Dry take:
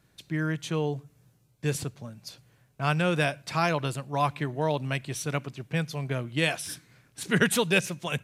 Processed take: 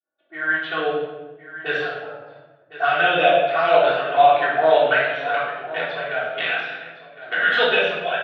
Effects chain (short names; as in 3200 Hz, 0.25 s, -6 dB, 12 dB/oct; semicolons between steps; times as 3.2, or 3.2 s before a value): expander -56 dBFS; low-pass opened by the level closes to 600 Hz, open at -24 dBFS; three-band isolator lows -12 dB, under 580 Hz, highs -19 dB, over 2900 Hz; AGC gain up to 10 dB; limiter -11 dBFS, peak gain reduction 7 dB; 5.27–7.46 AM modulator 110 Hz, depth 90%; envelope flanger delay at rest 3.5 ms, full sweep at -18.5 dBFS; speaker cabinet 460–4000 Hz, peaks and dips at 470 Hz +3 dB, 680 Hz +9 dB, 1000 Hz -9 dB, 1500 Hz +8 dB, 2200 Hz -5 dB, 3500 Hz +8 dB; echo 1.059 s -14.5 dB; reverb RT60 1.1 s, pre-delay 3 ms, DRR -7.5 dB